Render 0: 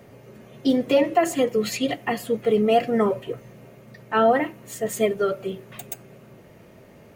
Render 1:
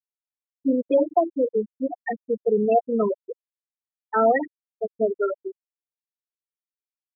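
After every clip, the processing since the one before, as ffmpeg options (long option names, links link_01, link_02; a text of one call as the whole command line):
ffmpeg -i in.wav -af "highpass=frequency=160:poles=1,afftfilt=real='re*gte(hypot(re,im),0.316)':imag='im*gte(hypot(re,im),0.316)':win_size=1024:overlap=0.75,equalizer=frequency=2100:width_type=o:width=0.26:gain=10" out.wav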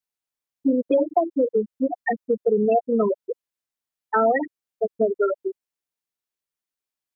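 ffmpeg -i in.wav -af "acompressor=threshold=-24dB:ratio=2.5,volume=5.5dB" out.wav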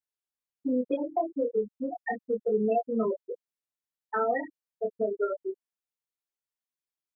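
ffmpeg -i in.wav -af "flanger=delay=22.5:depth=2.6:speed=0.32,volume=-4.5dB" out.wav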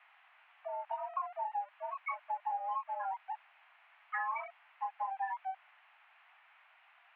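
ffmpeg -i in.wav -af "aeval=exprs='val(0)+0.5*0.0112*sgn(val(0))':channel_layout=same,acompressor=threshold=-27dB:ratio=6,highpass=frequency=310:width_type=q:width=0.5412,highpass=frequency=310:width_type=q:width=1.307,lowpass=frequency=2300:width_type=q:width=0.5176,lowpass=frequency=2300:width_type=q:width=0.7071,lowpass=frequency=2300:width_type=q:width=1.932,afreqshift=380,volume=-5.5dB" out.wav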